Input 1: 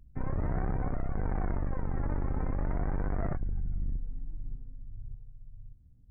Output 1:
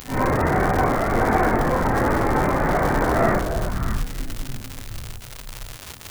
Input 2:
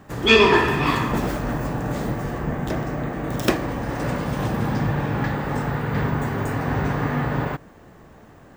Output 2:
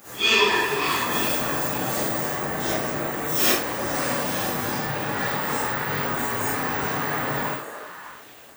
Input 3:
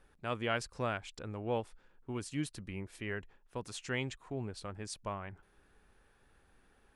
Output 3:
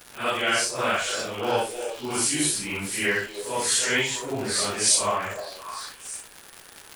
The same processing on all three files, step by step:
phase scrambler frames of 0.2 s; vocal rider within 4 dB 0.5 s; RIAA curve recording; crackle 210/s -43 dBFS; delay with a stepping band-pass 0.303 s, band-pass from 490 Hz, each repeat 1.4 oct, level -6 dB; normalise peaks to -6 dBFS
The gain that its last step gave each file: +22.5, -1.0, +14.0 dB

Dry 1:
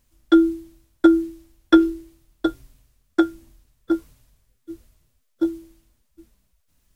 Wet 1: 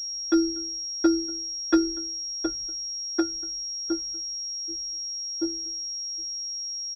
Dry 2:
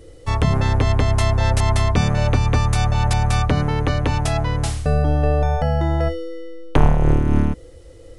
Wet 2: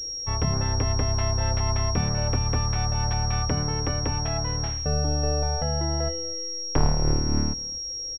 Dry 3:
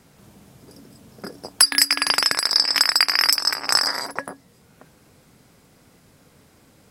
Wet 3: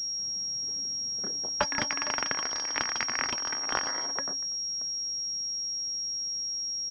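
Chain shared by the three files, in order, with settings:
on a send: echo 0.24 s -22.5 dB; on the sum: pulse-width modulation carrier 5600 Hz; gain -7.5 dB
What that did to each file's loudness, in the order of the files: -7.0, -6.0, -12.0 LU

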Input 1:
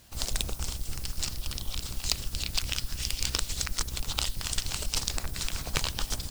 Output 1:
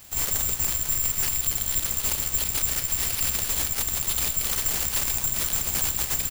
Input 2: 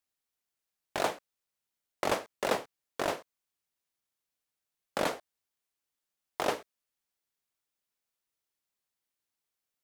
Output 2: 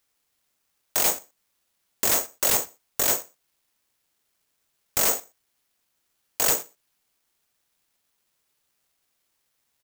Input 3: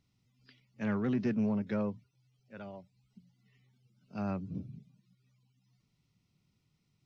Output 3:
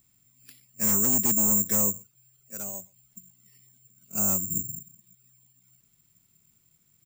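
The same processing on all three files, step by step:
wavefolder -28 dBFS; outdoor echo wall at 21 m, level -27 dB; careless resampling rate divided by 6×, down none, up zero stuff; match loudness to -23 LUFS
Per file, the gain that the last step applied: +1.0, +5.5, +2.0 dB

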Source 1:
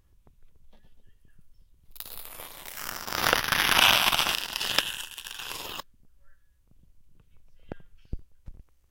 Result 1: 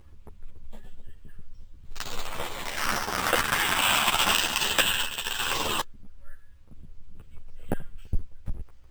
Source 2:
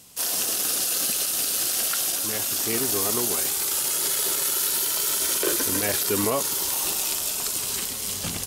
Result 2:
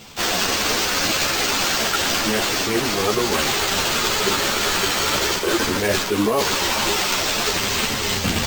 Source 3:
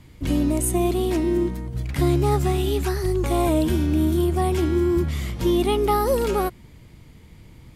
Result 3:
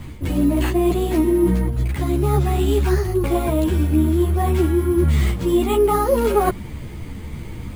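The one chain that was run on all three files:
LPF 3400 Hz 6 dB/oct; reverse; compressor 12:1, threshold -30 dBFS; reverse; sample-and-hold 4×; ensemble effect; normalise peaks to -6 dBFS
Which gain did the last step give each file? +15.0, +17.0, +18.0 dB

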